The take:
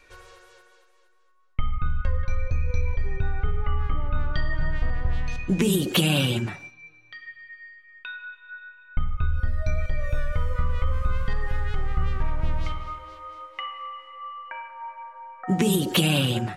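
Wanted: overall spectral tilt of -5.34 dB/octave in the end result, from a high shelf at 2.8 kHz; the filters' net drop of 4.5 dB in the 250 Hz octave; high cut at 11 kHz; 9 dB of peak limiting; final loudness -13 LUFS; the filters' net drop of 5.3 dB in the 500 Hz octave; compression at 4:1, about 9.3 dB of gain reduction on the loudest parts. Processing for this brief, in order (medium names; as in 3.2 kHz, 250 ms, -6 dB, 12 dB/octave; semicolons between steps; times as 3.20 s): low-pass 11 kHz; peaking EQ 250 Hz -6 dB; peaking EQ 500 Hz -4.5 dB; treble shelf 2.8 kHz -5 dB; compression 4:1, threshold -29 dBFS; trim +26 dB; peak limiter -0.5 dBFS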